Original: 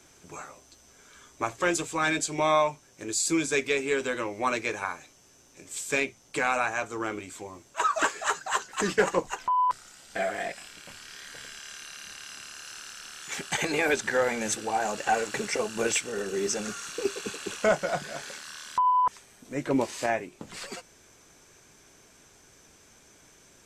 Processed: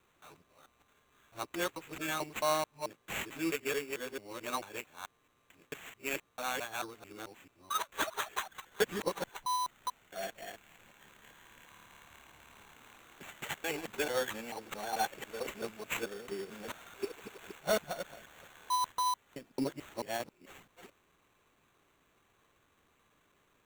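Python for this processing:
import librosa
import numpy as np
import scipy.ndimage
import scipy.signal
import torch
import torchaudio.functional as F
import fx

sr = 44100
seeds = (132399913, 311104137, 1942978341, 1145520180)

y = fx.local_reverse(x, sr, ms=220.0)
y = fx.sample_hold(y, sr, seeds[0], rate_hz=5000.0, jitter_pct=0)
y = fx.upward_expand(y, sr, threshold_db=-34.0, expansion=1.5)
y = y * 10.0 ** (-6.0 / 20.0)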